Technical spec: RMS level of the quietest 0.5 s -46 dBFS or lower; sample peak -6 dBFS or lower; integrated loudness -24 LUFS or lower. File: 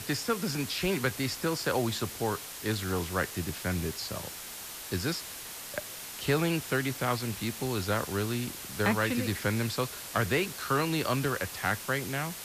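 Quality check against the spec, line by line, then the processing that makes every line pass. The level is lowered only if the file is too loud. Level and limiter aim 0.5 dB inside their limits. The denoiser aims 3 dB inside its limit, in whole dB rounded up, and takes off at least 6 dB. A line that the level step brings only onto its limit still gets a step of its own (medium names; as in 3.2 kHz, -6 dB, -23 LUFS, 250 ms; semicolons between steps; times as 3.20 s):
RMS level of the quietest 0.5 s -42 dBFS: fail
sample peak -15.5 dBFS: pass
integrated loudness -31.0 LUFS: pass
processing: noise reduction 7 dB, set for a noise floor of -42 dBFS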